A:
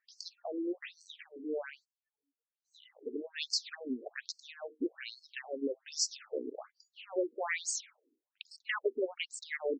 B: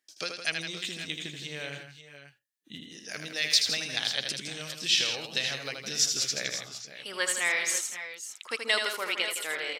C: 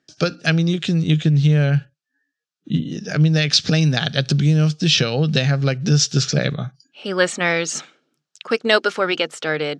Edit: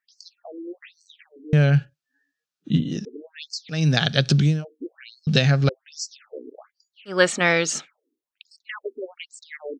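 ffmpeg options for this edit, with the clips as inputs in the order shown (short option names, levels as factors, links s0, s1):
-filter_complex "[2:a]asplit=4[s0][s1][s2][s3];[0:a]asplit=5[s4][s5][s6][s7][s8];[s4]atrim=end=1.532[s9];[s0]atrim=start=1.528:end=3.052[s10];[s5]atrim=start=3.048:end=3.92[s11];[s1]atrim=start=3.68:end=4.65[s12];[s6]atrim=start=4.41:end=5.272[s13];[s2]atrim=start=5.268:end=5.692[s14];[s7]atrim=start=5.688:end=7.21[s15];[s3]atrim=start=7.05:end=7.89[s16];[s8]atrim=start=7.73[s17];[s9][s10]acrossfade=d=0.004:c1=hsin:c2=hsin[s18];[s18][s11]acrossfade=d=0.004:c1=hsin:c2=hsin[s19];[s19][s12]acrossfade=d=0.24:c1=tri:c2=tri[s20];[s20][s13]acrossfade=d=0.24:c1=tri:c2=tri[s21];[s21][s14]acrossfade=d=0.004:c1=hsin:c2=hsin[s22];[s22][s15]acrossfade=d=0.004:c1=hsin:c2=hsin[s23];[s23][s16]acrossfade=d=0.16:c1=tri:c2=tri[s24];[s24][s17]acrossfade=d=0.16:c1=tri:c2=tri"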